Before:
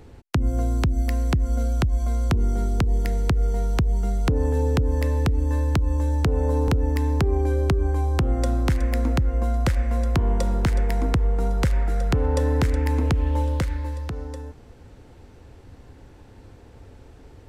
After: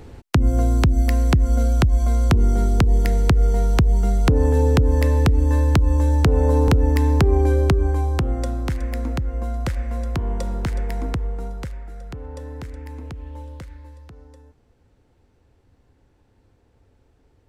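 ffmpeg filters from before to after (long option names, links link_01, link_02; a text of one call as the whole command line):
ffmpeg -i in.wav -af "volume=5dB,afade=type=out:start_time=7.47:duration=1.07:silence=0.398107,afade=type=out:start_time=11.09:duration=0.7:silence=0.316228" out.wav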